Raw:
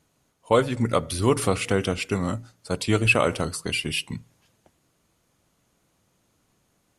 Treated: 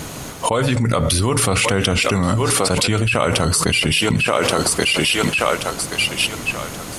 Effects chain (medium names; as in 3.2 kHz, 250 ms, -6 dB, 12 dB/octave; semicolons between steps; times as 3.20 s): thinning echo 1129 ms, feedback 26%, high-pass 470 Hz, level -17 dB; dynamic bell 350 Hz, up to -5 dB, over -33 dBFS, Q 1.1; level flattener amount 100%; trim -2.5 dB